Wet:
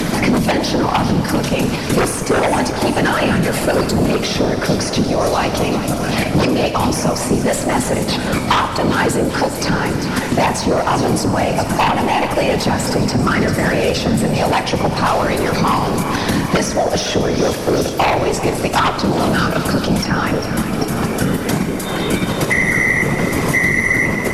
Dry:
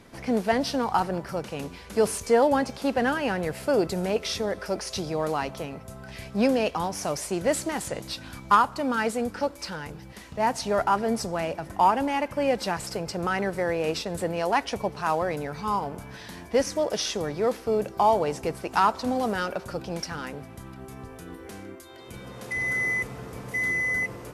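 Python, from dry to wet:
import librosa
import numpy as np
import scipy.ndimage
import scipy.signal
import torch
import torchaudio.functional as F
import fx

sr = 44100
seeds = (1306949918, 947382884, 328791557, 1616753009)

p1 = fx.peak_eq(x, sr, hz=180.0, db=10.0, octaves=0.24)
p2 = p1 + 0.4 * np.pad(p1, (int(4.7 * sr / 1000.0), 0))[:len(p1)]
p3 = fx.level_steps(p2, sr, step_db=19)
p4 = p2 + (p3 * 10.0 ** (2.0 / 20.0))
p5 = 10.0 ** (-10.0 / 20.0) * np.tanh(p4 / 10.0 ** (-10.0 / 20.0))
p6 = fx.whisperise(p5, sr, seeds[0])
p7 = fx.fold_sine(p6, sr, drive_db=11, ceiling_db=-2.5)
p8 = fx.echo_feedback(p7, sr, ms=394, feedback_pct=55, wet_db=-15)
p9 = fx.rev_schroeder(p8, sr, rt60_s=1.2, comb_ms=28, drr_db=9.5)
p10 = fx.band_squash(p9, sr, depth_pct=100)
y = p10 * 10.0 ** (-7.0 / 20.0)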